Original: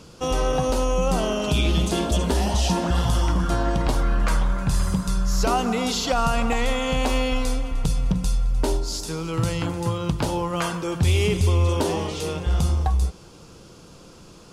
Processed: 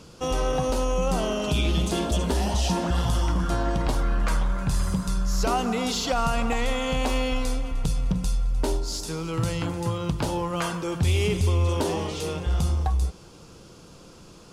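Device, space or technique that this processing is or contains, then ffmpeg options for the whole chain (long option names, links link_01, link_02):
parallel distortion: -filter_complex "[0:a]asplit=2[link_01][link_02];[link_02]asoftclip=type=hard:threshold=-26dB,volume=-12dB[link_03];[link_01][link_03]amix=inputs=2:normalize=0,volume=-3.5dB"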